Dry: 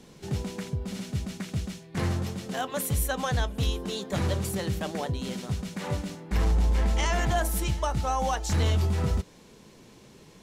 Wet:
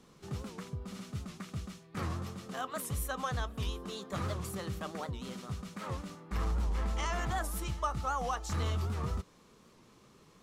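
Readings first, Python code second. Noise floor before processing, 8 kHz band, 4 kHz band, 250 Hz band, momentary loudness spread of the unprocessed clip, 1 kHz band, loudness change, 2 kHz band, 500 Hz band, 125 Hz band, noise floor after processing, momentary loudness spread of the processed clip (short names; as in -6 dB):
-53 dBFS, -9.0 dB, -9.0 dB, -9.0 dB, 8 LU, -5.0 dB, -8.0 dB, -7.0 dB, -9.0 dB, -9.0 dB, -61 dBFS, 9 LU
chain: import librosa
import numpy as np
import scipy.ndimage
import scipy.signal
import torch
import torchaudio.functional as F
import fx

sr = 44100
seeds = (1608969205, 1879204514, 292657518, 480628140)

y = fx.peak_eq(x, sr, hz=1200.0, db=13.0, octaves=0.3)
y = fx.record_warp(y, sr, rpm=78.0, depth_cents=160.0)
y = F.gain(torch.from_numpy(y), -9.0).numpy()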